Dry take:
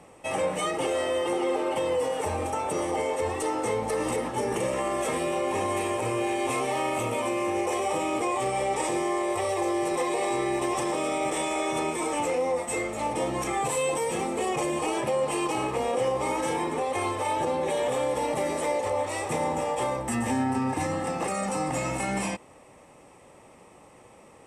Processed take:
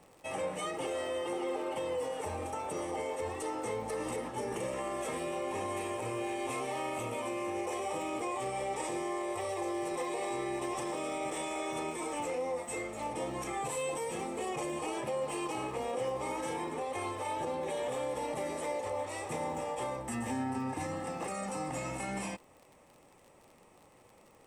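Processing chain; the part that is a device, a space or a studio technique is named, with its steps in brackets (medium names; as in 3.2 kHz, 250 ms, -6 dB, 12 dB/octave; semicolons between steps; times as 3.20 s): vinyl LP (crackle 47 per s -38 dBFS; pink noise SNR 39 dB); trim -8.5 dB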